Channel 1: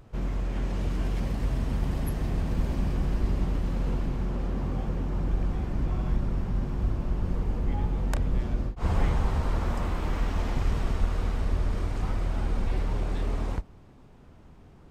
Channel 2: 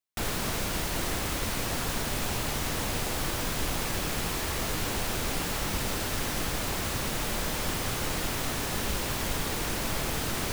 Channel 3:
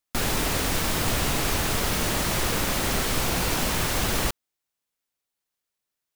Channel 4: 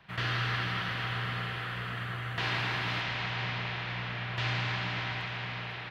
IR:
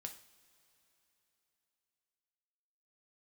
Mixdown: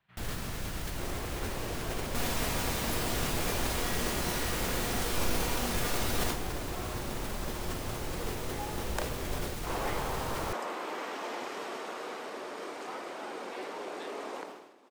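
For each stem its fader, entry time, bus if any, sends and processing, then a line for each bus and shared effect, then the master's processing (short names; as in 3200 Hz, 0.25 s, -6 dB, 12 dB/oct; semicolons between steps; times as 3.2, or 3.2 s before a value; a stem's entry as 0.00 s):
+0.5 dB, 0.85 s, no send, HPF 350 Hz 24 dB/oct
-10.5 dB, 0.00 s, no send, low shelf 190 Hz +8 dB
+3.0 dB, 2.00 s, no send, resonator 240 Hz, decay 0.7 s, harmonics all, mix 80%
-19.0 dB, 0.00 s, no send, dry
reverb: off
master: sustainer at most 59 dB/s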